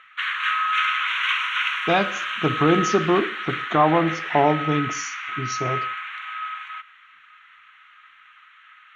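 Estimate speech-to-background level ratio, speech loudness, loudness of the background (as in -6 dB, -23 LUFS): 2.0 dB, -23.0 LUFS, -25.0 LUFS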